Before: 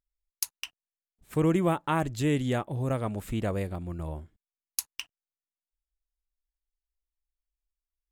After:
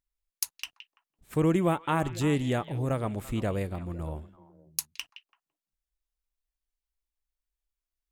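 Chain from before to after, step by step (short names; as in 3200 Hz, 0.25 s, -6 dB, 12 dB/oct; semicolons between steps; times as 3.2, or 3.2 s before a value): delay with a stepping band-pass 0.168 s, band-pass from 2800 Hz, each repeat -1.4 oct, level -10.5 dB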